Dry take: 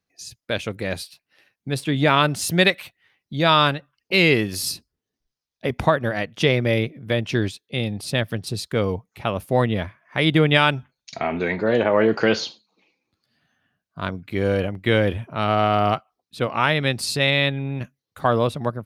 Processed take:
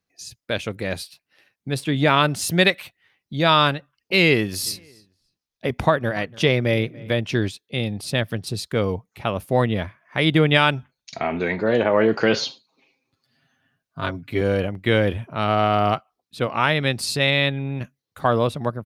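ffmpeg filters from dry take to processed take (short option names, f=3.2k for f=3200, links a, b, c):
-filter_complex "[0:a]asplit=3[a][b][c];[a]afade=t=out:st=4.65:d=0.02[d];[b]asplit=2[e][f];[f]adelay=288,lowpass=f=3.4k:p=1,volume=-22dB,asplit=2[g][h];[h]adelay=288,lowpass=f=3.4k:p=1,volume=0.28[i];[e][g][i]amix=inputs=3:normalize=0,afade=t=in:st=4.65:d=0.02,afade=t=out:st=7.09:d=0.02[j];[c]afade=t=in:st=7.09:d=0.02[k];[d][j][k]amix=inputs=3:normalize=0,asettb=1/sr,asplit=3[l][m][n];[l]atrim=end=12.334[o];[m]atrim=start=12.33:end=14.41,asetpts=PTS-STARTPTS,afade=t=in:d=0.004:c=qsin,afade=t=out:st=2.076:d=0.004:c=qsin,aecho=1:1:7.5:0.73,atrim=end_sample=91728[p];[n]atrim=start=14.406[q];[o][p]acrossfade=d=0.004:c1=hsin:c2=qsin[r];[r][q]acrossfade=d=0.004:c1=qsin:c2=hsin"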